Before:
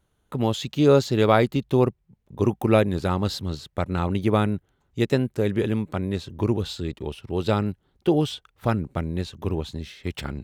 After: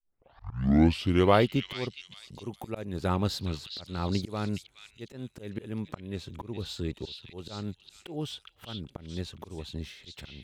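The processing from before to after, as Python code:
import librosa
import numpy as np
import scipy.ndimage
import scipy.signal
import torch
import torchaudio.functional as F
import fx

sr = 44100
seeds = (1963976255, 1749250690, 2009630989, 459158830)

y = fx.tape_start_head(x, sr, length_s=1.43)
y = fx.auto_swell(y, sr, attack_ms=356.0)
y = fx.echo_stepped(y, sr, ms=415, hz=3200.0, octaves=0.7, feedback_pct=70, wet_db=-1.5)
y = y * librosa.db_to_amplitude(-3.5)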